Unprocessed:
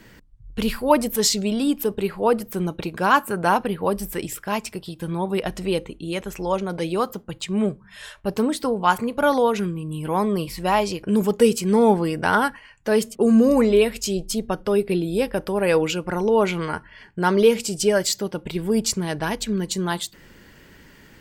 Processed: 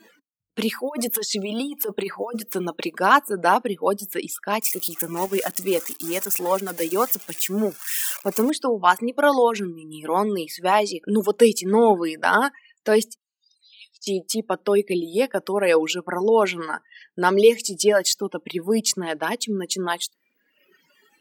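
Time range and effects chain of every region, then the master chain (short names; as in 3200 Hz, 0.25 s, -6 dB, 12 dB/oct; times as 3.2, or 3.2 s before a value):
0.84–2.97 low shelf 420 Hz -3.5 dB + negative-ratio compressor -26 dBFS + modulation noise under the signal 30 dB
4.62–8.5 switching spikes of -16.5 dBFS + bell 4000 Hz -8.5 dB 0.72 oct
13.17–14.07 inverse Chebyshev high-pass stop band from 730 Hz, stop band 80 dB + air absorption 210 m
whole clip: reverb removal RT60 1.2 s; HPF 220 Hz 24 dB/oct; spectral noise reduction 18 dB; gain +2 dB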